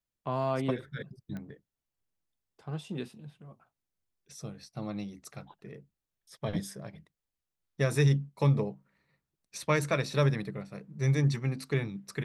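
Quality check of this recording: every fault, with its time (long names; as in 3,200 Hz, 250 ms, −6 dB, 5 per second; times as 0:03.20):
0:01.37: click −29 dBFS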